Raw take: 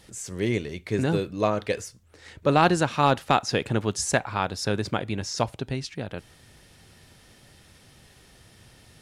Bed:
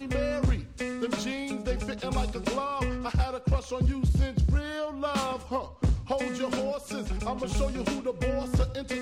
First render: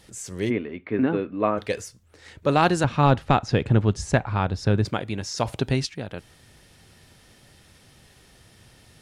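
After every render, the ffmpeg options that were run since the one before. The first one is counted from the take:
ffmpeg -i in.wav -filter_complex "[0:a]asplit=3[link_01][link_02][link_03];[link_01]afade=type=out:start_time=0.49:duration=0.02[link_04];[link_02]highpass=130,equalizer=frequency=150:width_type=q:width=4:gain=-8,equalizer=frequency=260:width_type=q:width=4:gain=9,equalizer=frequency=1200:width_type=q:width=4:gain=4,lowpass=frequency=2600:width=0.5412,lowpass=frequency=2600:width=1.3066,afade=type=in:start_time=0.49:duration=0.02,afade=type=out:start_time=1.57:duration=0.02[link_05];[link_03]afade=type=in:start_time=1.57:duration=0.02[link_06];[link_04][link_05][link_06]amix=inputs=3:normalize=0,asettb=1/sr,asplit=3[link_07][link_08][link_09];[link_07]atrim=end=2.844[link_10];[link_08]atrim=start=2.84:end=4.85,asetpts=PTS-STARTPTS,afade=type=in:duration=0.004:curve=qsin,afade=type=out:start_time=2.006:duration=0.004:curve=qsin,aemphasis=mode=reproduction:type=bsi[link_11];[link_09]atrim=start=4.846[link_12];[link_10][link_11]acrossfade=duration=0.004:curve1=hsin:curve2=qsin[link_13];[link_13][link_12]acrossfade=duration=0.004:curve1=qsin:curve2=hsin,asplit=3[link_14][link_15][link_16];[link_14]afade=type=out:start_time=5.45:duration=0.02[link_17];[link_15]acontrast=83,afade=type=in:start_time=5.45:duration=0.02,afade=type=out:start_time=5.85:duration=0.02[link_18];[link_16]afade=type=in:start_time=5.85:duration=0.02[link_19];[link_17][link_18][link_19]amix=inputs=3:normalize=0" out.wav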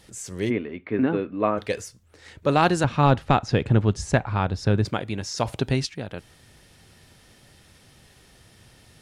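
ffmpeg -i in.wav -af anull out.wav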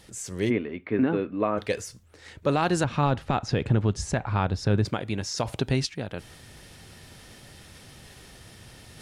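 ffmpeg -i in.wav -af "areverse,acompressor=mode=upward:threshold=-40dB:ratio=2.5,areverse,alimiter=limit=-13.5dB:level=0:latency=1:release=96" out.wav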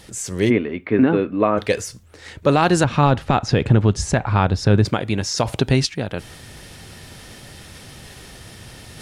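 ffmpeg -i in.wav -af "volume=8dB" out.wav

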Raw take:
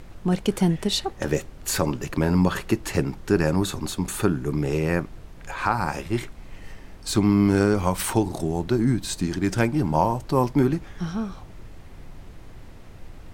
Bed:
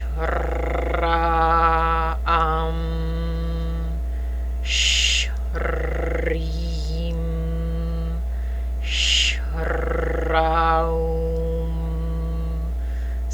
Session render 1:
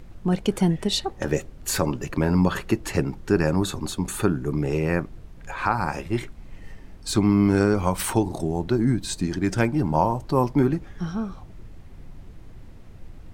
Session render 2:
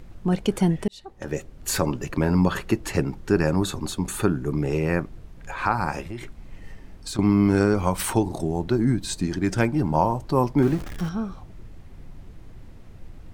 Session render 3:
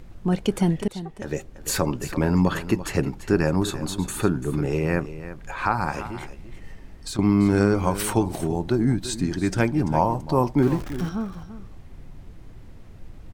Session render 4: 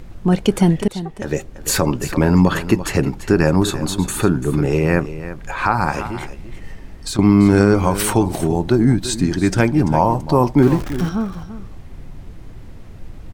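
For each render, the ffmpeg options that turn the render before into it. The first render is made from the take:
ffmpeg -i in.wav -af "afftdn=noise_reduction=6:noise_floor=-43" out.wav
ffmpeg -i in.wav -filter_complex "[0:a]asettb=1/sr,asplit=3[link_01][link_02][link_03];[link_01]atrim=end=6.004[link_04];[link_02]atrim=start=6:end=7.19,asetpts=PTS-STARTPTS,afade=type=in:duration=0.004:curve=qsin,afade=type=out:start_time=1.186:duration=0.004:curve=qsin,acompressor=threshold=-29dB:ratio=6:attack=3.2:release=140:knee=1:detection=peak[link_05];[link_03]atrim=start=7.186[link_06];[link_04][link_05]acrossfade=duration=0.004:curve1=hsin:curve2=qsin[link_07];[link_07][link_06]acrossfade=duration=0.004:curve1=qsin:curve2=hsin,asettb=1/sr,asplit=3[link_08][link_09][link_10];[link_08]atrim=end=10.624[link_11];[link_09]atrim=start=10.62:end=11.09,asetpts=PTS-STARTPTS,afade=type=in:duration=0.004:curve=qsin,afade=type=out:start_time=0.466:duration=0.004:curve=qsin,aeval=exprs='val(0)+0.5*0.0251*sgn(val(0))':channel_layout=same[link_12];[link_10]atrim=start=11.086[link_13];[link_11][link_12]acrossfade=duration=0.004:curve1=hsin:curve2=qsin[link_14];[link_14][link_13]acrossfade=duration=0.004:curve1=qsin:curve2=hsin,asplit=2[link_15][link_16];[link_15]atrim=end=0.88,asetpts=PTS-STARTPTS,afade=type=out:start_time=0.876:duration=0.004:curve=hsin[link_17];[link_16]atrim=start=0.88,asetpts=PTS-STARTPTS,afade=type=in:duration=0.8[link_18];[link_17][link_18]concat=n=2:v=0:a=1" out.wav
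ffmpeg -i in.wav -af "aecho=1:1:340:0.211" out.wav
ffmpeg -i in.wav -af "volume=7dB,alimiter=limit=-2dB:level=0:latency=1" out.wav

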